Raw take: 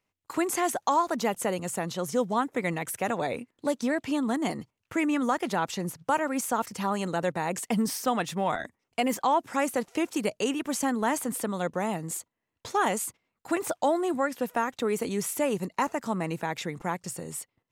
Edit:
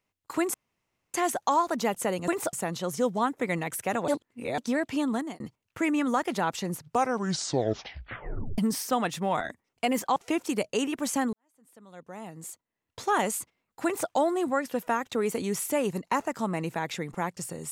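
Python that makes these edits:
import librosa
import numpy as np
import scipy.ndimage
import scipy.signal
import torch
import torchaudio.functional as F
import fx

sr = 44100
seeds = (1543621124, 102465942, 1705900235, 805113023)

y = fx.edit(x, sr, fx.insert_room_tone(at_s=0.54, length_s=0.6),
    fx.reverse_span(start_s=3.23, length_s=0.5),
    fx.fade_out_span(start_s=4.27, length_s=0.28),
    fx.tape_stop(start_s=5.9, length_s=1.83),
    fx.cut(start_s=9.31, length_s=0.52),
    fx.fade_in_span(start_s=11.0, length_s=1.71, curve='qua'),
    fx.duplicate(start_s=13.52, length_s=0.25, to_s=1.68), tone=tone)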